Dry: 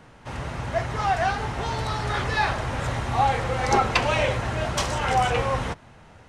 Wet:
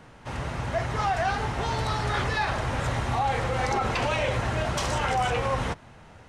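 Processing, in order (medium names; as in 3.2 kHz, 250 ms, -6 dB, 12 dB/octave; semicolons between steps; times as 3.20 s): peak limiter -17 dBFS, peak gain reduction 10 dB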